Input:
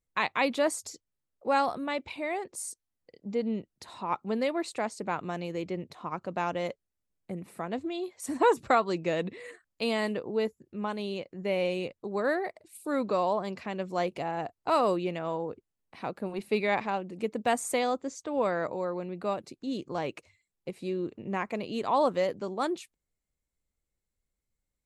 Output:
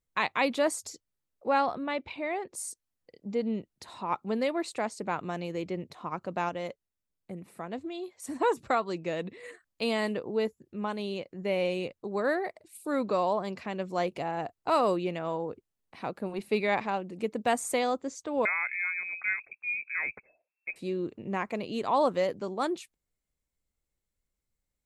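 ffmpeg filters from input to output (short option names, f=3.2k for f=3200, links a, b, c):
-filter_complex "[0:a]asettb=1/sr,asplit=3[a][b][c];[a]atrim=end=1.484[d];[b]atrim=start=1.48:end=2.52,asetpts=PTS-STARTPTS,afade=t=in:d=0.004:c=qsin,afade=t=out:st=1.036:d=0.004:c=qsin,lowpass=4.2k[e];[c]atrim=start=2.516[f];[d][e]acrossfade=d=0.004:c1=hsin:c2=qsin[g];[g][f]acrossfade=d=0.004:c1=qsin:c2=hsin,asettb=1/sr,asplit=3[h][i][j];[h]atrim=end=18.454[k];[i]atrim=start=18.45:end=20.76,asetpts=PTS-STARTPTS,afade=t=in:d=0.004:c=qsin,afade=t=out:st=2.306:d=0.004:c=qsin,lowpass=f=2.3k:t=q:w=0.5098,lowpass=f=2.3k:t=q:w=0.6013,lowpass=f=2.3k:t=q:w=0.9,lowpass=f=2.3k:t=q:w=2.563,afreqshift=-2700[l];[j]atrim=start=20.756[m];[k][l]acrossfade=d=0.004:c1=hsin:c2=qsin[n];[n][m]acrossfade=d=0.004:c1=qsin:c2=hsin,asplit=3[o][p][q];[o]atrim=end=6.492[r];[p]atrim=start=6.488:end=9.432,asetpts=PTS-STARTPTS,volume=-3.5dB[s];[q]atrim=start=9.428[t];[r][s]acrossfade=d=0.004:c1=hsin:c2=hsin[u];[u][t]acrossfade=d=0.004:c1=hsin:c2=hsin"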